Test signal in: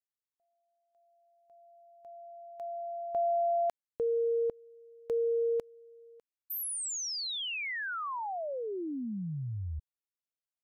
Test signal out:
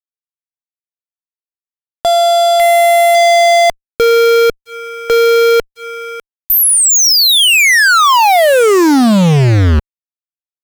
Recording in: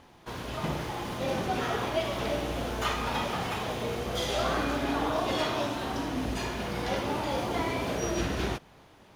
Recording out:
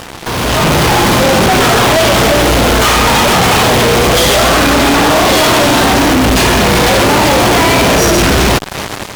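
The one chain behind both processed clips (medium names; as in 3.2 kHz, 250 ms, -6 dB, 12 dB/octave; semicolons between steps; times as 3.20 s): in parallel at -3 dB: compression 16:1, threshold -41 dBFS; on the sum: fuzz box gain 54 dB, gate -48 dBFS; level rider gain up to 11.5 dB; trim -3.5 dB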